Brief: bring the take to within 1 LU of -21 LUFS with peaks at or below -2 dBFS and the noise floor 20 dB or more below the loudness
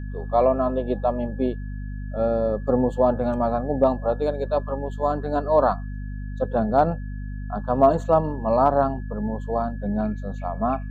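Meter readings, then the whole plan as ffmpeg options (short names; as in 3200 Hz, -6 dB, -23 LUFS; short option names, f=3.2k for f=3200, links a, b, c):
hum 50 Hz; harmonics up to 250 Hz; hum level -29 dBFS; steady tone 1700 Hz; tone level -49 dBFS; loudness -23.5 LUFS; peak -6.0 dBFS; loudness target -21.0 LUFS
-> -af "bandreject=f=50:t=h:w=4,bandreject=f=100:t=h:w=4,bandreject=f=150:t=h:w=4,bandreject=f=200:t=h:w=4,bandreject=f=250:t=h:w=4"
-af "bandreject=f=1.7k:w=30"
-af "volume=2.5dB"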